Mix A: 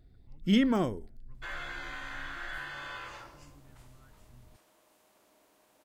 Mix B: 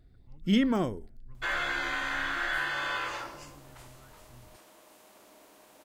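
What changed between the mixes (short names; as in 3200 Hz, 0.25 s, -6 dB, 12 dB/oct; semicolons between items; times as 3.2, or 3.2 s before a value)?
speech +3.5 dB; second sound +9.5 dB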